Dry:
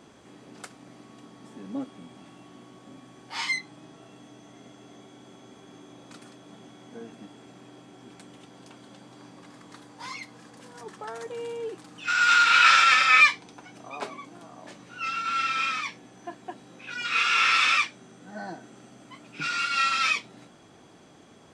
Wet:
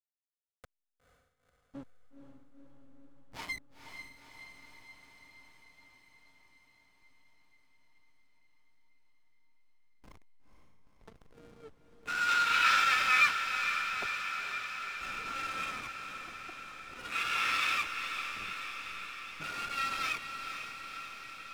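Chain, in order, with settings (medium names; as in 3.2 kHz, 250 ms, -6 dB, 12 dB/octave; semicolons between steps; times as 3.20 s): hysteresis with a dead band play -25 dBFS; echo that smears into a reverb 488 ms, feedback 72%, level -7.5 dB; trim -8.5 dB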